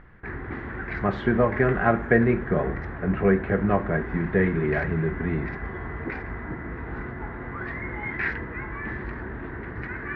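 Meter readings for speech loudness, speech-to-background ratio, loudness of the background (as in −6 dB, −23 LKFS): −24.5 LKFS, 9.5 dB, −34.0 LKFS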